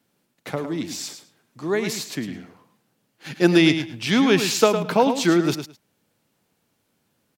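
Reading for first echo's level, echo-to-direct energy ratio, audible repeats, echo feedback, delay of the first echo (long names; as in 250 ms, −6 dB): −9.0 dB, −9.0 dB, 2, 16%, 107 ms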